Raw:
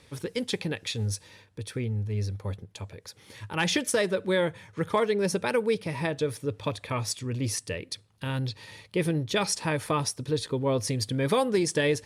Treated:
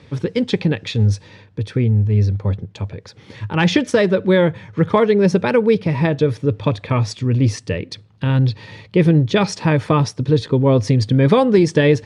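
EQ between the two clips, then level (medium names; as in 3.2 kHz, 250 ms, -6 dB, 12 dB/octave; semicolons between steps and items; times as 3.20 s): high-pass 110 Hz; distance through air 130 m; bass shelf 240 Hz +11.5 dB; +8.5 dB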